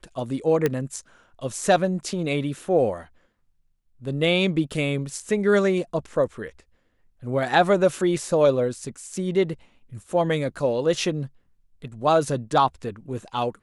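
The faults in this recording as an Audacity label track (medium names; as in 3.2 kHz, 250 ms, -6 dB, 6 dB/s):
0.660000	0.660000	pop -9 dBFS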